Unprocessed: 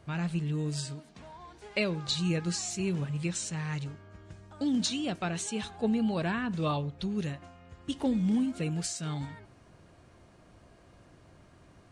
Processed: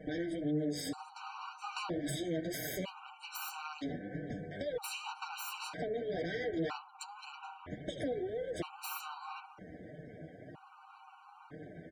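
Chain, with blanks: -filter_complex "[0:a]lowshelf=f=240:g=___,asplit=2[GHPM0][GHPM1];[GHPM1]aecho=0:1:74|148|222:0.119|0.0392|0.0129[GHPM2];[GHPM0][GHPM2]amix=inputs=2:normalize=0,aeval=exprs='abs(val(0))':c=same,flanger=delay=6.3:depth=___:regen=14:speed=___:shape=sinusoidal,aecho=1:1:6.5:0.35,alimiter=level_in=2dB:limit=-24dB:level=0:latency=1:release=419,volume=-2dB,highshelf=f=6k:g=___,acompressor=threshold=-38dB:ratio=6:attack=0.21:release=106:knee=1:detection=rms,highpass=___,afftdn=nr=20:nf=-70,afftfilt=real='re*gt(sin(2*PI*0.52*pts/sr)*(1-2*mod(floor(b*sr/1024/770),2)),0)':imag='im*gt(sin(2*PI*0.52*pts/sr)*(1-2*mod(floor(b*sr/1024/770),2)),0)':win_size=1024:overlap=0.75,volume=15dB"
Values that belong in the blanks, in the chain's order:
2.5, 6.1, 1.9, -3.5, 75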